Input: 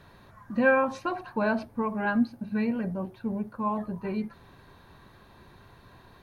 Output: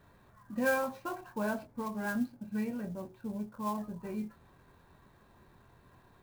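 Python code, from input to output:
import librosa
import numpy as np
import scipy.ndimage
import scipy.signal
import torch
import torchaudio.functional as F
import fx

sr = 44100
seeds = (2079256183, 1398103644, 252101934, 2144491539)

y = fx.high_shelf(x, sr, hz=4200.0, db=-10.0)
y = fx.doubler(y, sr, ms=24.0, db=-7)
y = fx.clock_jitter(y, sr, seeds[0], jitter_ms=0.025)
y = y * 10.0 ** (-8.0 / 20.0)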